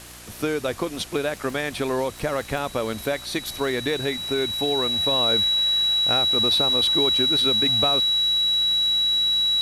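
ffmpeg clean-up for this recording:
-af "adeclick=t=4,bandreject=f=59.9:t=h:w=4,bandreject=f=119.8:t=h:w=4,bandreject=f=179.7:t=h:w=4,bandreject=f=239.6:t=h:w=4,bandreject=f=299.5:t=h:w=4,bandreject=f=359.4:t=h:w=4,bandreject=f=3.9k:w=30,afwtdn=0.0079"

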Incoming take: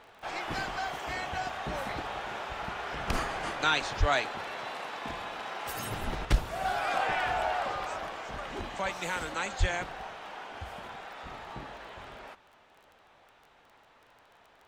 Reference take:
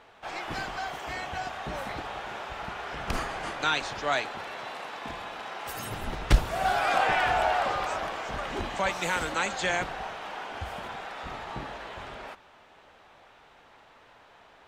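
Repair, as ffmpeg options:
-filter_complex "[0:a]adeclick=t=4,asplit=3[a][b][c];[a]afade=t=out:st=3.99:d=0.02[d];[b]highpass=f=140:w=0.5412,highpass=f=140:w=1.3066,afade=t=in:st=3.99:d=0.02,afade=t=out:st=4.11:d=0.02[e];[c]afade=t=in:st=4.11:d=0.02[f];[d][e][f]amix=inputs=3:normalize=0,asplit=3[g][h][i];[g]afade=t=out:st=9.59:d=0.02[j];[h]highpass=f=140:w=0.5412,highpass=f=140:w=1.3066,afade=t=in:st=9.59:d=0.02,afade=t=out:st=9.71:d=0.02[k];[i]afade=t=in:st=9.71:d=0.02[l];[j][k][l]amix=inputs=3:normalize=0,asetnsamples=n=441:p=0,asendcmd='6.25 volume volume 5dB',volume=0dB"

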